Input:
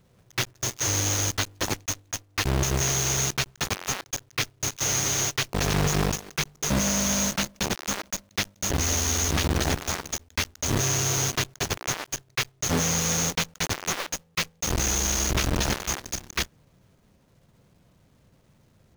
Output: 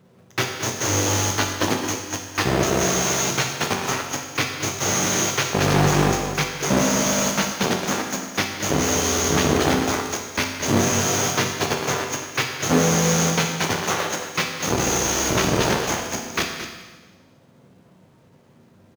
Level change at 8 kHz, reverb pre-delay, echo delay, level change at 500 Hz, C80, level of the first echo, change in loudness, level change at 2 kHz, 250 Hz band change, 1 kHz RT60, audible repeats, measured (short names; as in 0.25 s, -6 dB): +2.0 dB, 8 ms, 0.222 s, +10.0 dB, 5.0 dB, -11.0 dB, +4.5 dB, +6.0 dB, +8.0 dB, 1.3 s, 1